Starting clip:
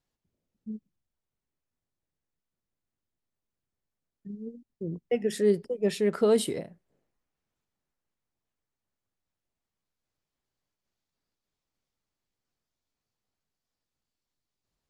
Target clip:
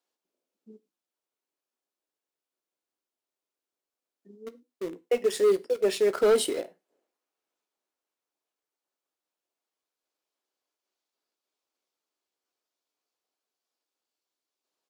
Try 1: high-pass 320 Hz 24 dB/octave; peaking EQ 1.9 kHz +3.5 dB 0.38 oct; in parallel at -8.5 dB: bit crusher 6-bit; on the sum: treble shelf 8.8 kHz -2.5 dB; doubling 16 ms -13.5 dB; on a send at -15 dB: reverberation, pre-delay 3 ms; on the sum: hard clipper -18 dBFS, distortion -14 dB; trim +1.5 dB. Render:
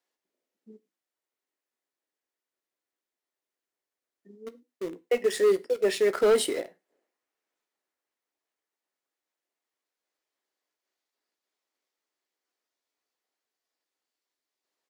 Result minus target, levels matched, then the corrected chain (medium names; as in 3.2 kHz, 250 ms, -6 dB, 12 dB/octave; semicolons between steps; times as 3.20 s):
2 kHz band +3.0 dB
high-pass 320 Hz 24 dB/octave; peaking EQ 1.9 kHz -4.5 dB 0.38 oct; in parallel at -8.5 dB: bit crusher 6-bit; on the sum: treble shelf 8.8 kHz -2.5 dB; doubling 16 ms -13.5 dB; on a send at -15 dB: reverberation, pre-delay 3 ms; on the sum: hard clipper -18 dBFS, distortion -14 dB; trim +1.5 dB